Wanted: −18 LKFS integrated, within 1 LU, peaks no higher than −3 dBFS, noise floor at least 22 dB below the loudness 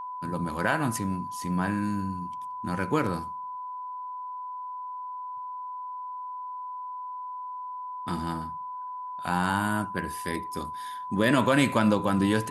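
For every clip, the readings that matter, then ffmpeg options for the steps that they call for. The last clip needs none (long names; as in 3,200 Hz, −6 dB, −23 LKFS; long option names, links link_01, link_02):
interfering tone 1,000 Hz; level of the tone −34 dBFS; integrated loudness −30.0 LKFS; sample peak −8.0 dBFS; target loudness −18.0 LKFS
→ -af "bandreject=frequency=1000:width=30"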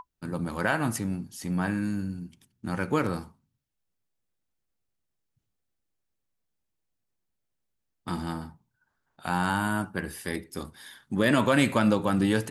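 interfering tone none found; integrated loudness −28.0 LKFS; sample peak −9.0 dBFS; target loudness −18.0 LKFS
→ -af "volume=10dB,alimiter=limit=-3dB:level=0:latency=1"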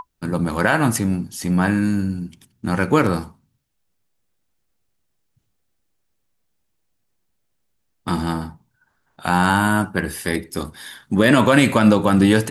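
integrated loudness −18.5 LKFS; sample peak −3.0 dBFS; background noise floor −71 dBFS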